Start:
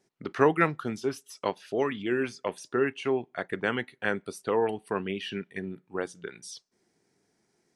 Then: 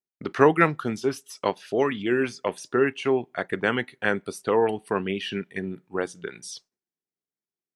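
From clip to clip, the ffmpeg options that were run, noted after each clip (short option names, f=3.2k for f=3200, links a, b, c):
-af "agate=range=-33dB:threshold=-51dB:ratio=3:detection=peak,volume=4.5dB"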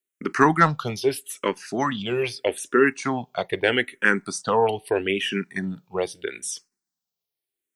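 -filter_complex "[0:a]highshelf=f=2.3k:g=7.5,asplit=2[a][b];[b]aeval=exprs='1*sin(PI/2*1.78*val(0)/1)':c=same,volume=-11.5dB[c];[a][c]amix=inputs=2:normalize=0,asplit=2[d][e];[e]afreqshift=-0.79[f];[d][f]amix=inputs=2:normalize=1"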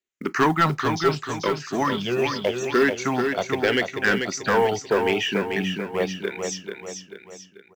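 -af "aresample=16000,asoftclip=type=tanh:threshold=-13.5dB,aresample=44100,acrusher=bits=8:mode=log:mix=0:aa=0.000001,aecho=1:1:439|878|1317|1756|2195:0.531|0.239|0.108|0.0484|0.0218,volume=1.5dB"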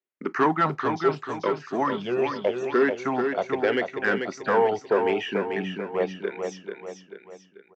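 -af "bandpass=f=610:t=q:w=0.54:csg=0"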